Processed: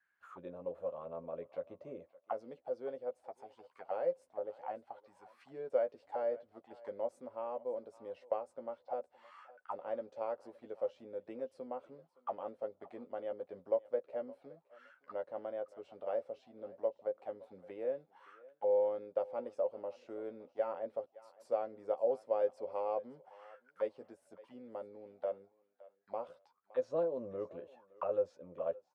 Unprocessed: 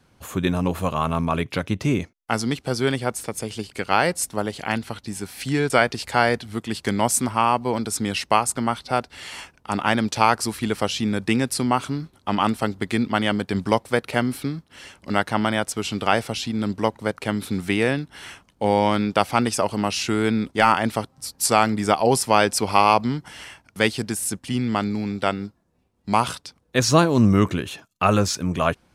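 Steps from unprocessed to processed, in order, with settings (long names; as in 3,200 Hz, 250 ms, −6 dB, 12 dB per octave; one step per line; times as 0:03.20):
envelope filter 540–1,700 Hz, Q 13, down, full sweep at −21.5 dBFS
double-tracking delay 12 ms −6 dB
feedback echo with a high-pass in the loop 566 ms, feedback 20%, high-pass 570 Hz, level −18 dB
level −4 dB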